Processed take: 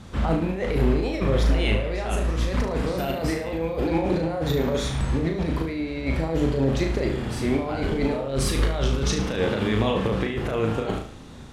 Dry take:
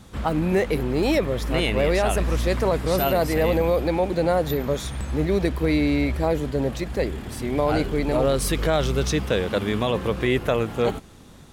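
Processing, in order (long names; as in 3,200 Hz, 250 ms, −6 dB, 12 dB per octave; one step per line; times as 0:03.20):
compressor whose output falls as the input rises −24 dBFS, ratio −0.5
high-frequency loss of the air 52 metres
flutter between parallel walls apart 6.3 metres, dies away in 0.48 s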